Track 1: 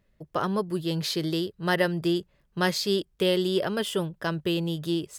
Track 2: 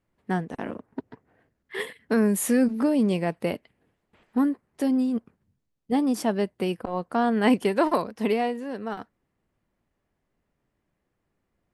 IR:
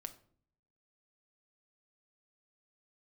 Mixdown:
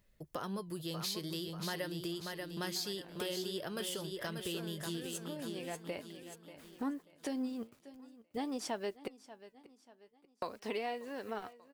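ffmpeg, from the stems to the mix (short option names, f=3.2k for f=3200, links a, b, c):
-filter_complex "[0:a]acompressor=threshold=-29dB:ratio=2,volume=-0.5dB,asplit=3[a][b][c];[b]volume=-7dB[d];[1:a]lowpass=5.5k,equalizer=f=190:t=o:w=1.1:g=-9.5,acrusher=bits=10:mix=0:aa=0.000001,adelay=2450,volume=1.5dB,asplit=3[e][f][g];[e]atrim=end=9.08,asetpts=PTS-STARTPTS,afade=t=out:st=9.076:d=0.004:c=hsin[h];[f]atrim=start=9.08:end=10.42,asetpts=PTS-STARTPTS,volume=0[i];[g]atrim=start=10.42,asetpts=PTS-STARTPTS,afade=t=in:d=0.004:c=hsin[j];[h][i][j]concat=n=3:v=0:a=1,asplit=2[k][l];[l]volume=-23.5dB[m];[c]apad=whole_len=625505[n];[k][n]sidechaincompress=threshold=-43dB:ratio=8:attack=16:release=1200[o];[d][m]amix=inputs=2:normalize=0,aecho=0:1:587|1174|1761|2348|2935:1|0.38|0.144|0.0549|0.0209[p];[a][o][p]amix=inputs=3:normalize=0,highshelf=f=4.4k:g=11.5,flanger=delay=0.9:depth=8.3:regen=77:speed=0.46:shape=triangular,acompressor=threshold=-41dB:ratio=2"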